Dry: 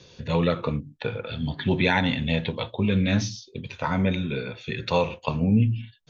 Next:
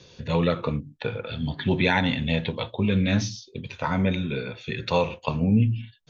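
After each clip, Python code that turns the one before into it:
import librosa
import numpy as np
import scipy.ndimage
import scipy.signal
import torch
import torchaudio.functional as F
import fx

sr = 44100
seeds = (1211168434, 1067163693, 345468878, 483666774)

y = x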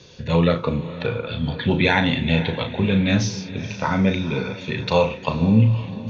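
y = fx.doubler(x, sr, ms=36.0, db=-8)
y = fx.echo_diffused(y, sr, ms=490, feedback_pct=44, wet_db=-14.0)
y = y * 10.0 ** (3.5 / 20.0)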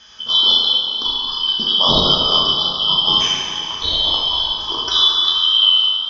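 y = fx.band_shuffle(x, sr, order='2413')
y = fx.rev_plate(y, sr, seeds[0], rt60_s=2.2, hf_ratio=0.75, predelay_ms=0, drr_db=-3.5)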